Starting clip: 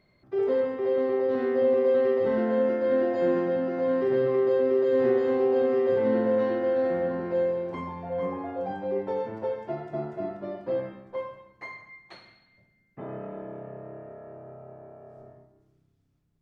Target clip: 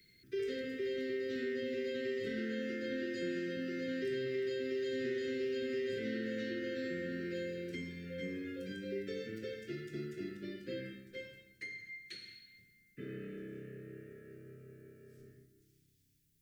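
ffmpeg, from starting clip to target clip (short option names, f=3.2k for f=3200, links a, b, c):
-filter_complex "[0:a]crystalizer=i=6.5:c=0,asuperstop=centerf=850:order=8:qfactor=0.74,acrossover=split=120|430|1300[a][b][c][d];[a]acompressor=threshold=-53dB:ratio=4[e];[b]acompressor=threshold=-35dB:ratio=4[f];[c]acompressor=threshold=-39dB:ratio=4[g];[d]acompressor=threshold=-41dB:ratio=4[h];[e][f][g][h]amix=inputs=4:normalize=0,volume=-5dB"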